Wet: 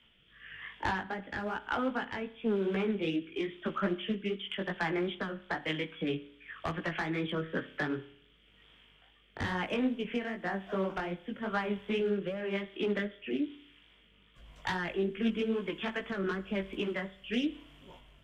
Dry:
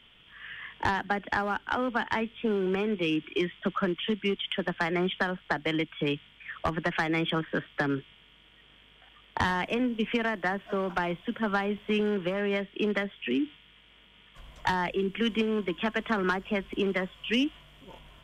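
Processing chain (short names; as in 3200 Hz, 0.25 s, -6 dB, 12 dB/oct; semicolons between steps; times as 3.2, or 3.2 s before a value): chorus 2.5 Hz, delay 16 ms, depth 4.8 ms; rotary speaker horn 1 Hz; on a send at -14.5 dB: reverb RT60 0.65 s, pre-delay 31 ms; on the sum: Doppler distortion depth 0.15 ms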